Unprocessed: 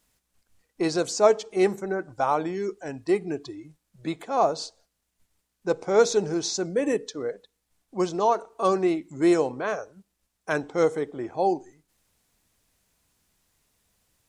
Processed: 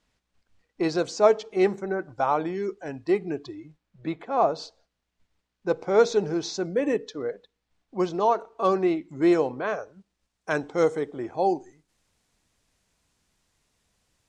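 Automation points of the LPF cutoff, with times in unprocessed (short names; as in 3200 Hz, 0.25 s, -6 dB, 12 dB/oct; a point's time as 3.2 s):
3.55 s 4600 Hz
4.25 s 2500 Hz
4.65 s 4300 Hz
9.74 s 4300 Hz
10.57 s 8000 Hz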